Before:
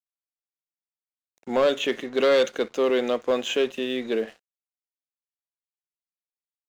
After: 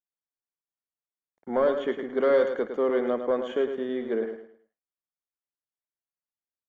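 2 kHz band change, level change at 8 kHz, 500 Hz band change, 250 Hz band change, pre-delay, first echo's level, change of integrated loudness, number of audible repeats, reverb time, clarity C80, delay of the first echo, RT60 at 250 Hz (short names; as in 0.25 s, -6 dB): -6.0 dB, n/a, -2.0 dB, -2.0 dB, none, -8.0 dB, -2.5 dB, 3, none, none, 0.107 s, none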